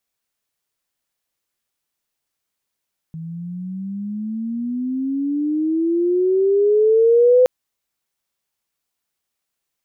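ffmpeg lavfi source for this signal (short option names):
-f lavfi -i "aevalsrc='pow(10,(-28+19.5*t/4.32)/20)*sin(2*PI*160*4.32/log(510/160)*(exp(log(510/160)*t/4.32)-1))':d=4.32:s=44100"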